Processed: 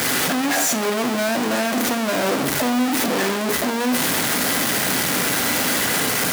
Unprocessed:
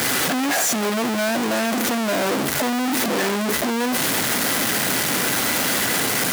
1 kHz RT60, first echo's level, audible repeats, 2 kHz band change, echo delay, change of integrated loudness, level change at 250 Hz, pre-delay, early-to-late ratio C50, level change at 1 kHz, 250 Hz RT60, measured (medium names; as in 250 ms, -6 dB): 1.0 s, no echo, no echo, +0.5 dB, no echo, +0.5 dB, +1.0 dB, 3 ms, 11.0 dB, +0.5 dB, 0.85 s